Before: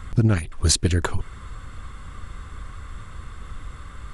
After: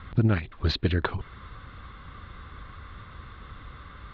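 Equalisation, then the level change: HPF 77 Hz 6 dB/oct; elliptic low-pass 3900 Hz, stop band 60 dB; -1.5 dB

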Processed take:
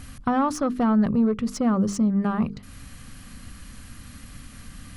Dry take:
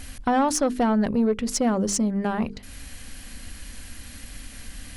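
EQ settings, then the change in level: bell 140 Hz +13.5 dB 1.5 oct; dynamic EQ 8800 Hz, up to -6 dB, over -42 dBFS, Q 0.73; bell 1200 Hz +11.5 dB 0.37 oct; -5.5 dB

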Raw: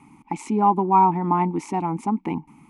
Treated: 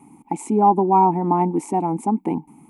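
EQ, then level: low shelf 62 Hz -10 dB; low shelf 270 Hz -9.5 dB; band shelf 2500 Hz -15 dB 2.9 oct; +9.0 dB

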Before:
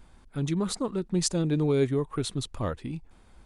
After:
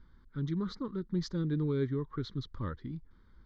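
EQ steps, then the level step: air absorption 200 m; fixed phaser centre 2600 Hz, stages 6; -4.0 dB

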